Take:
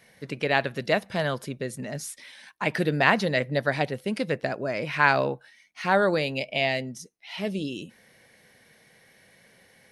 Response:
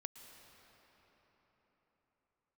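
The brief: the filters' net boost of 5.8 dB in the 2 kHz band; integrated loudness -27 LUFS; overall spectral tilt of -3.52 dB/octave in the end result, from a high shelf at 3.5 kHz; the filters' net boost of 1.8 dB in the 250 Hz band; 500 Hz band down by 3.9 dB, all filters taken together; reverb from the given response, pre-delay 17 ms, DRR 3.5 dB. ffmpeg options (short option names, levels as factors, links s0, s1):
-filter_complex "[0:a]equalizer=f=250:t=o:g=4,equalizer=f=500:t=o:g=-6.5,equalizer=f=2000:t=o:g=5,highshelf=f=3500:g=9,asplit=2[s0][s1];[1:a]atrim=start_sample=2205,adelay=17[s2];[s1][s2]afir=irnorm=-1:irlink=0,volume=1.06[s3];[s0][s3]amix=inputs=2:normalize=0,volume=0.562"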